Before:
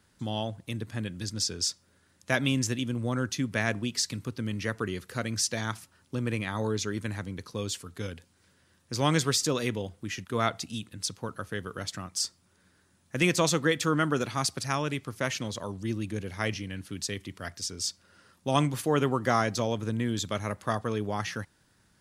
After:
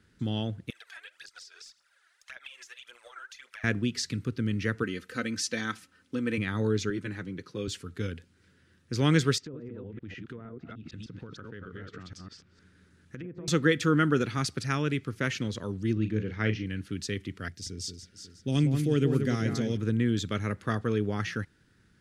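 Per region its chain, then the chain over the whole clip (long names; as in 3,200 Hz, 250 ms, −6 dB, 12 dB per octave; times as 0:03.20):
0:00.70–0:03.64: Butterworth high-pass 670 Hz + downward compressor 10 to 1, threshold −44 dBFS + phase shifter 1.8 Hz, delay 3.2 ms, feedback 68%
0:04.83–0:06.38: low-shelf EQ 170 Hz −11 dB + comb filter 3.9 ms, depth 52%
0:06.90–0:07.68: high-pass filter 160 Hz + high-shelf EQ 7,200 Hz −6 dB + notch comb filter 230 Hz
0:09.38–0:13.48: delay that plays each chunk backwards 153 ms, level −1.5 dB + treble cut that deepens with the level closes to 790 Hz, closed at −23.5 dBFS + downward compressor, threshold −41 dBFS
0:15.93–0:16.66: high-frequency loss of the air 120 metres + double-tracking delay 37 ms −9 dB
0:17.48–0:19.77: parametric band 1,100 Hz −14 dB 1.8 octaves + delay that swaps between a low-pass and a high-pass 182 ms, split 2,300 Hz, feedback 62%, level −5.5 dB
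whole clip: low-pass filter 2,300 Hz 6 dB per octave; flat-topped bell 790 Hz −10.5 dB 1.2 octaves; level +3.5 dB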